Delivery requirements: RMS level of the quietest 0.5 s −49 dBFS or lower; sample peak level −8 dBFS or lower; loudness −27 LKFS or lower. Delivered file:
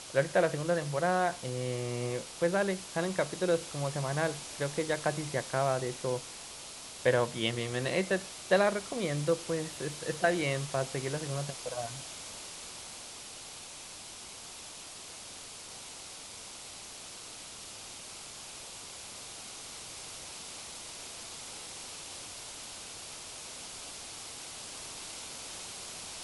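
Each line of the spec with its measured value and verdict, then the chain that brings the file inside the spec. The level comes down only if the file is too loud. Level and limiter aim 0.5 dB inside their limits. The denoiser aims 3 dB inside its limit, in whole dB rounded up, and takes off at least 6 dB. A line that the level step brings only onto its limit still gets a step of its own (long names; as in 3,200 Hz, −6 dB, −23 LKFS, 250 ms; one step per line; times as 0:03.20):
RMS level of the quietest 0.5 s −47 dBFS: out of spec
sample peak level −12.0 dBFS: in spec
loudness −35.0 LKFS: in spec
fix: broadband denoise 6 dB, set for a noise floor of −47 dBFS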